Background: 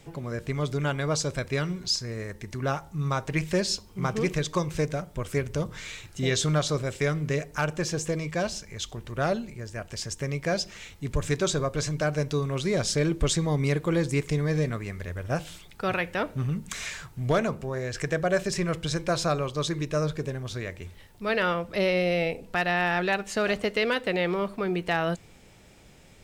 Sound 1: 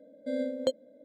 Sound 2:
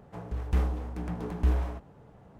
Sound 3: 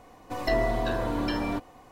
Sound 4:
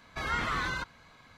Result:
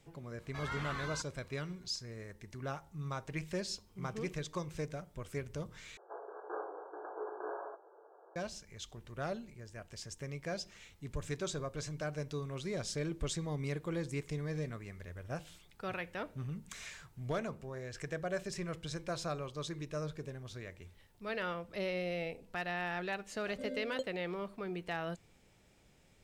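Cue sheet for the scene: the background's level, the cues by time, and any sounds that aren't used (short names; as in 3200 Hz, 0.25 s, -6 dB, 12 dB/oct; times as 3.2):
background -12.5 dB
0.38 add 4 -10 dB
5.97 replace with 2 -1 dB + brick-wall FIR band-pass 330–1700 Hz
23.32 add 1 -11 dB
not used: 3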